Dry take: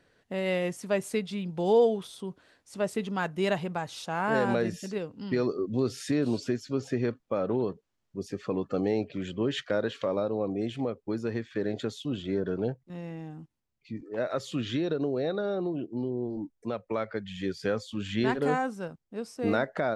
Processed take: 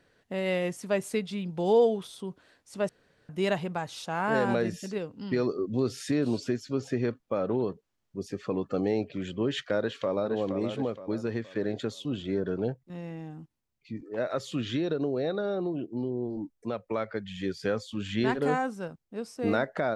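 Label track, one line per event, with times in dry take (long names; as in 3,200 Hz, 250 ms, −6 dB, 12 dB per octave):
2.890000	3.290000	fill with room tone
9.780000	10.350000	delay throw 470 ms, feedback 40%, level −7 dB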